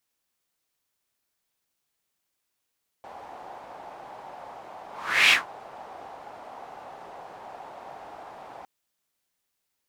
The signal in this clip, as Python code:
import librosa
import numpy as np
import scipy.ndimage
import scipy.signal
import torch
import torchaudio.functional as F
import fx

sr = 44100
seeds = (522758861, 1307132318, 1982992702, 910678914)

y = fx.whoosh(sr, seeds[0], length_s=5.61, peak_s=2.27, rise_s=0.44, fall_s=0.16, ends_hz=780.0, peak_hz=2600.0, q=3.6, swell_db=26.0)